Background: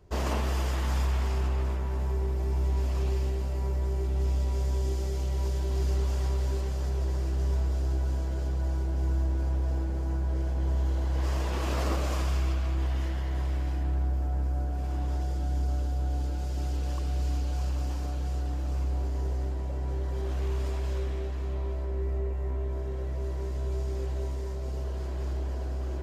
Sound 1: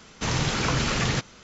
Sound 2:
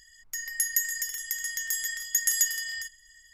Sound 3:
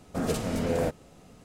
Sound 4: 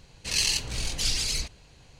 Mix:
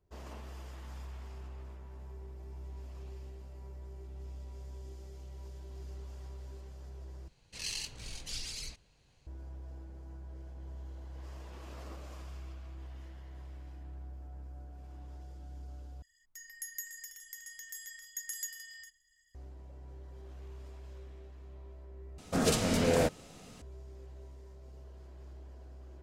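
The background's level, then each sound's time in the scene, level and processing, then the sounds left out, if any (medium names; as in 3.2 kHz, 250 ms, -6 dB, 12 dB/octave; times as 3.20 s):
background -18 dB
7.28 s: replace with 4 -13.5 dB
16.02 s: replace with 2 -15.5 dB
22.18 s: replace with 3 -0.5 dB + peaking EQ 5 kHz +7.5 dB 2.7 oct
not used: 1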